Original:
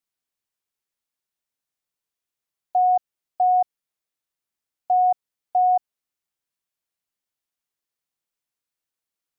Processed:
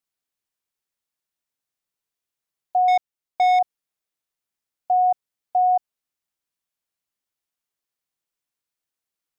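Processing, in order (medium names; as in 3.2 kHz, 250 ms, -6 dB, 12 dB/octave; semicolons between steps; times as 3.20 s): 2.88–3.59 s: waveshaping leveller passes 2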